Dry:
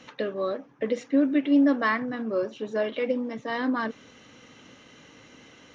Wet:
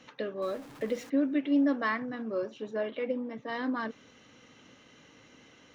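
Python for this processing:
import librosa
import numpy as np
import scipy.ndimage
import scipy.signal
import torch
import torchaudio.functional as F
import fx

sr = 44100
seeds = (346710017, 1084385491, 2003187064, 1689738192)

y = fx.zero_step(x, sr, step_db=-39.5, at=(0.42, 1.1))
y = fx.bessel_lowpass(y, sr, hz=3200.0, order=2, at=(2.71, 3.49))
y = y * 10.0 ** (-5.5 / 20.0)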